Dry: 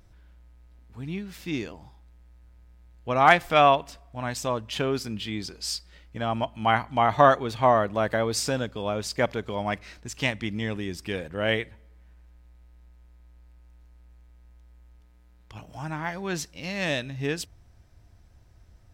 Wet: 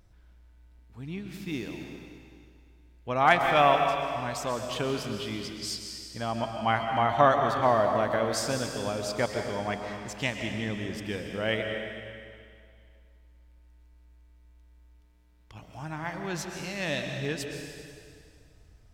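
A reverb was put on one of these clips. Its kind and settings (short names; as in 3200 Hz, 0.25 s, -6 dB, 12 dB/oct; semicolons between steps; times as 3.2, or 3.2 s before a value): digital reverb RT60 2.2 s, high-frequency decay 1×, pre-delay 90 ms, DRR 3.5 dB; gain -4 dB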